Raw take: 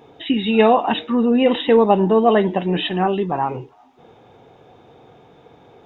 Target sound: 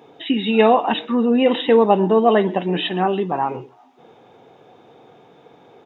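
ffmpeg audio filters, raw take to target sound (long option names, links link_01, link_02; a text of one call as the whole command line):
ffmpeg -i in.wav -filter_complex "[0:a]highpass=160,asplit=2[link_01][link_02];[link_02]adelay=128.3,volume=-24dB,highshelf=frequency=4000:gain=-2.89[link_03];[link_01][link_03]amix=inputs=2:normalize=0" out.wav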